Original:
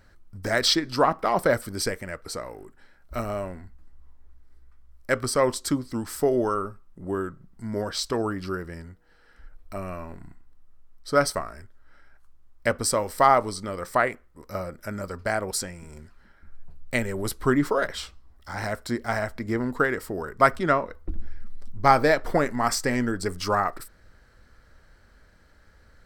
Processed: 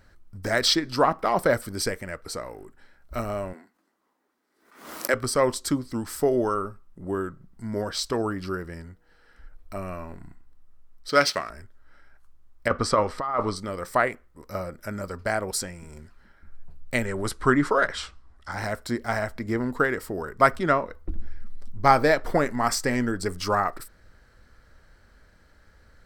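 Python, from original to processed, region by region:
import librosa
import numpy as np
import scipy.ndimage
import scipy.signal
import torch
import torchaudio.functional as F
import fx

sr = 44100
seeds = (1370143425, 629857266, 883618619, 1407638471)

y = fx.chain(x, sr, fx.highpass(hz=260.0, slope=24),
    fx.pre_swell(db_per_s=92.0), at=(3.53, 5.14))
y = fx.chain(y, sr, fx.median_filter(points=5),
    fx.weighting(curve='D'), at=(11.09, 11.5))
y = fx.chain(y, sr, fx.lowpass(hz=4000.0, slope=12),
    fx.over_compress(threshold_db=-23.0, ratio=-0.5),
    fx.peak_eq(hz=1200.0, db=9.5, octaves=0.32), at=(12.68, 13.56))
y = fx.chain(y, sr, fx.lowpass(hz=10000.0, slope=24),
    fx.peak_eq(hz=1400.0, db=6.0, octaves=1.1), at=(17.05, 18.52))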